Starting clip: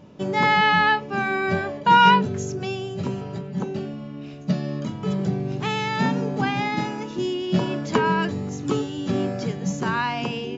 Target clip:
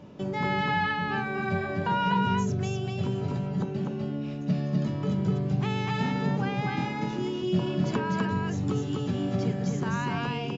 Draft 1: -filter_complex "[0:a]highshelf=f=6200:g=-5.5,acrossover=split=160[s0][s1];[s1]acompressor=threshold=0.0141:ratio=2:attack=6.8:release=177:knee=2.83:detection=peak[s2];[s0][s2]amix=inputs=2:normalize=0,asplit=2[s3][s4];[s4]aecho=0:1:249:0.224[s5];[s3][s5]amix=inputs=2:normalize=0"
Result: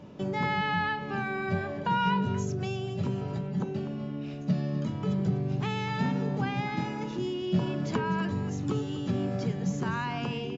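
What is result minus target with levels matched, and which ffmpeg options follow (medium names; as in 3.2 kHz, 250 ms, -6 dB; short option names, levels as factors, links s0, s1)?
echo-to-direct -11 dB
-filter_complex "[0:a]highshelf=f=6200:g=-5.5,acrossover=split=160[s0][s1];[s1]acompressor=threshold=0.0141:ratio=2:attack=6.8:release=177:knee=2.83:detection=peak[s2];[s0][s2]amix=inputs=2:normalize=0,asplit=2[s3][s4];[s4]aecho=0:1:249:0.794[s5];[s3][s5]amix=inputs=2:normalize=0"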